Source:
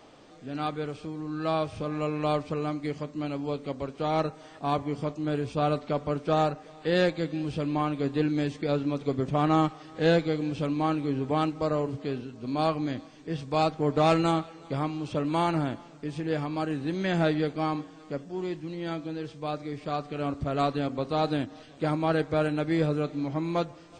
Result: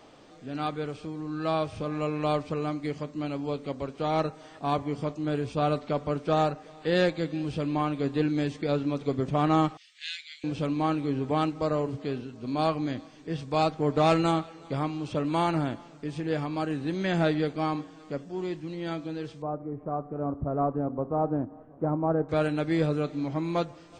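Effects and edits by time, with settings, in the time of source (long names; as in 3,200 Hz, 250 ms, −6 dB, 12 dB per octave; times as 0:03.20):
0:09.77–0:10.44: Butterworth high-pass 2,100 Hz
0:19.42–0:22.29: low-pass filter 1,100 Hz 24 dB per octave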